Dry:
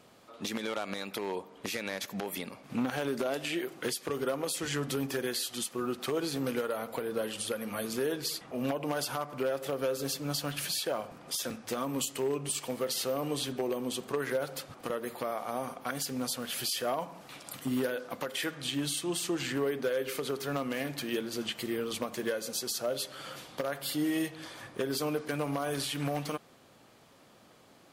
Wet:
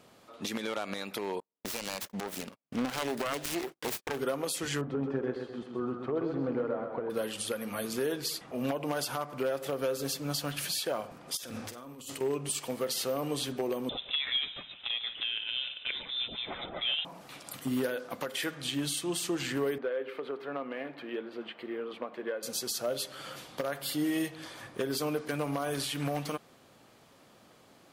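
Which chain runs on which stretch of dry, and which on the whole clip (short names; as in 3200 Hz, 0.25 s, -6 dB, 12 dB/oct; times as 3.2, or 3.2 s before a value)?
1.4–4.19 self-modulated delay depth 0.81 ms + gate -45 dBFS, range -44 dB
4.81–7.1 LPF 1100 Hz + feedback echo 0.129 s, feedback 48%, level -5.5 dB
11.37–12.21 negative-ratio compressor -44 dBFS + bell 100 Hz +7 dB 0.22 oct + flutter echo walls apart 8.2 m, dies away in 0.26 s
13.89–17.05 echo 0.147 s -14.5 dB + inverted band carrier 3800 Hz
19.78–22.43 HPF 330 Hz + air absorption 480 m
whole clip: dry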